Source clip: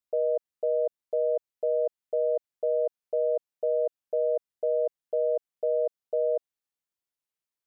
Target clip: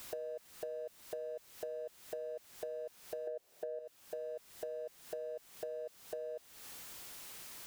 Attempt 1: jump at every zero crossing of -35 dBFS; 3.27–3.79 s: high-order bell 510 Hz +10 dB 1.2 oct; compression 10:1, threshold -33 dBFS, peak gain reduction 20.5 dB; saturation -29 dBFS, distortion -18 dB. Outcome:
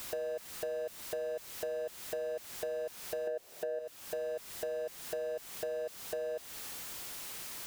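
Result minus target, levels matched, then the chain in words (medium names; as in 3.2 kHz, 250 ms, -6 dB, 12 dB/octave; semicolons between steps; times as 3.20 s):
compression: peak gain reduction -6 dB; jump at every zero crossing: distortion +6 dB
jump at every zero crossing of -41.5 dBFS; 3.27–3.79 s: high-order bell 510 Hz +10 dB 1.2 oct; compression 10:1, threshold -40 dBFS, peak gain reduction 26 dB; saturation -29 dBFS, distortion -26 dB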